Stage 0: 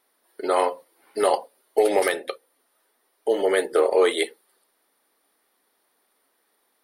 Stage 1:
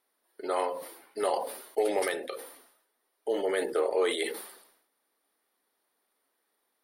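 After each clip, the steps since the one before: sustainer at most 74 dB/s; gain -8.5 dB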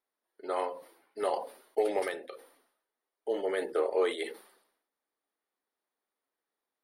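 high shelf 5000 Hz -8 dB; upward expander 1.5:1, over -43 dBFS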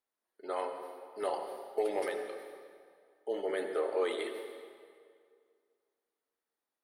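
reverb RT60 2.2 s, pre-delay 63 ms, DRR 6.5 dB; gain -3.5 dB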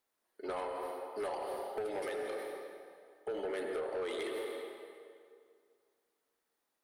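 compressor 5:1, threshold -38 dBFS, peak gain reduction 10.5 dB; soft clip -38.5 dBFS, distortion -13 dB; gain +6.5 dB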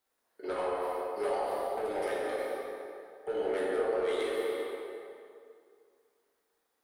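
plate-style reverb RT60 1.6 s, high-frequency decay 0.5×, DRR -4 dB

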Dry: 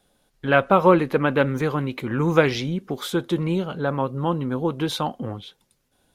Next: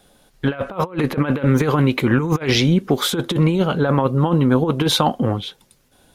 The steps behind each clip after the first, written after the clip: negative-ratio compressor -24 dBFS, ratio -0.5; gain +7.5 dB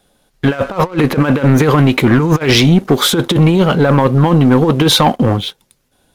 sample leveller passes 2; gain +1 dB

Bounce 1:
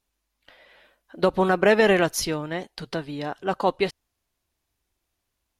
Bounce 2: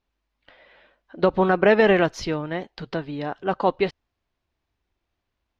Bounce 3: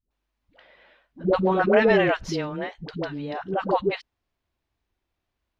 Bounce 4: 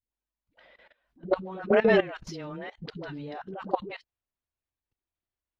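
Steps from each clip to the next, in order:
air absorption 190 m; gain +2 dB
dispersion highs, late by 0.109 s, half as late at 430 Hz; gain -1.5 dB
bin magnitudes rounded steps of 15 dB; level quantiser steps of 19 dB

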